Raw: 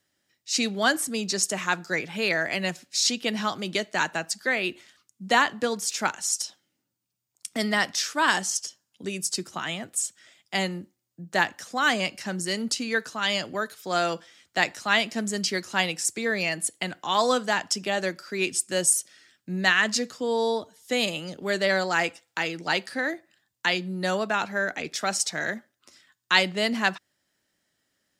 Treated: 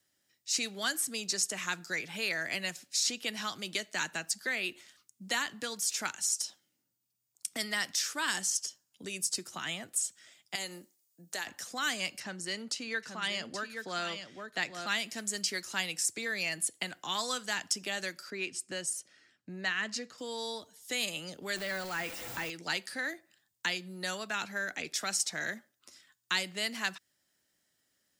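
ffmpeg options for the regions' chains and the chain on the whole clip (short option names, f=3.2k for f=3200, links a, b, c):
-filter_complex "[0:a]asettb=1/sr,asplit=3[a][b][c];[a]atrim=end=10.554[d];[b]atrim=start=10.55:end=11.47,asetpts=PTS-STARTPTS,afade=t=in:d=0.004:c=qsin,afade=t=out:st=0.916:d=0.004:c=qsin,bass=f=250:g=-14,treble=f=4k:g=8,acompressor=threshold=-34dB:ratio=2:attack=3.2:release=140:knee=1:detection=peak[e];[c]atrim=start=11.466[f];[d][e]acrossfade=d=0.004:c1=hsin:c2=qsin[g];[g][f]acrossfade=d=0.004:c1=qsin:c2=hsin,asettb=1/sr,asplit=3[h][i][j];[h]atrim=end=12.204[k];[i]atrim=start=12.2:end=14.87,asetpts=PTS-STARTPTS,afade=t=in:d=0.004:c=qsin,afade=t=out:st=2.666:d=0.004:c=qsin,aemphasis=mode=reproduction:type=50fm,aecho=1:1:826:0.355,atrim=end_sample=117747[l];[j]atrim=start=14.866[m];[k][l]acrossfade=d=0.004:c1=hsin:c2=qsin[n];[n][m]acrossfade=d=0.004:c1=qsin:c2=hsin,asettb=1/sr,asplit=3[o][p][q];[o]atrim=end=18.304[r];[p]atrim=start=18.3:end=20.18,asetpts=PTS-STARTPTS,afade=t=in:d=0.004:c=qsin,afade=t=out:st=1.876:d=0.004:c=qsin,highpass=f=410:p=1,aemphasis=mode=reproduction:type=riaa,bandreject=f=3.5k:w=16[s];[q]atrim=start=20.176[t];[r][s]acrossfade=d=0.004:c1=hsin:c2=qsin[u];[u][t]acrossfade=d=0.004:c1=qsin:c2=hsin,asettb=1/sr,asplit=3[v][w][x];[v]atrim=end=21.564[y];[w]atrim=start=21.56:end=22.5,asetpts=PTS-STARTPTS,afade=t=in:d=0.004:c=qsin,afade=t=out:st=0.936:d=0.004:c=qsin,aeval=exprs='val(0)+0.5*0.0473*sgn(val(0))':c=same,deesser=0.75[z];[x]atrim=start=22.496[aa];[y][z]acrossfade=d=0.004:c1=hsin:c2=qsin[ab];[ab][aa]acrossfade=d=0.004:c1=qsin:c2=hsin,highshelf=f=5.4k:g=8,acrossover=split=410|1300|2600|5600[ac][ad][ae][af][ag];[ac]acompressor=threshold=-41dB:ratio=4[ah];[ad]acompressor=threshold=-41dB:ratio=4[ai];[ae]acompressor=threshold=-28dB:ratio=4[aj];[af]acompressor=threshold=-33dB:ratio=4[ak];[ag]acompressor=threshold=-26dB:ratio=4[al];[ah][ai][aj][ak][al]amix=inputs=5:normalize=0,volume=-5dB"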